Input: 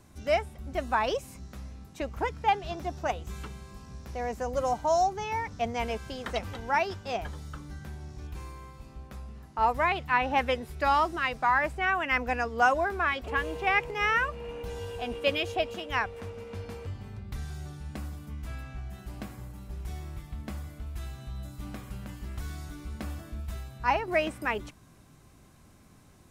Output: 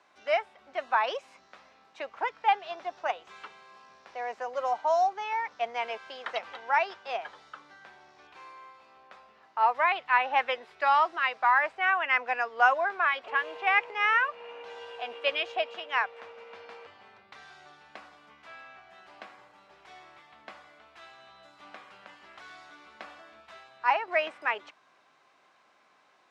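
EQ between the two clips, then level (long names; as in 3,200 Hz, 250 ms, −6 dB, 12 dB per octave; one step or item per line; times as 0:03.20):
high-pass filter 320 Hz 12 dB per octave
high-frequency loss of the air 93 metres
three-way crossover with the lows and the highs turned down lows −18 dB, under 570 Hz, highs −12 dB, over 4,800 Hz
+3.0 dB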